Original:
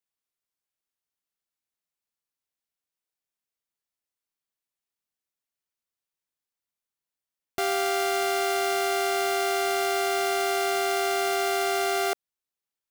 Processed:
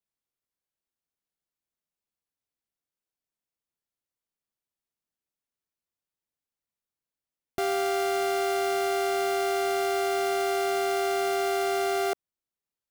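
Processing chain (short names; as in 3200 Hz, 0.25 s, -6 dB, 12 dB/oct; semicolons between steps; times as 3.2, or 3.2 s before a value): tilt shelf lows +4 dB, about 700 Hz; gain -1 dB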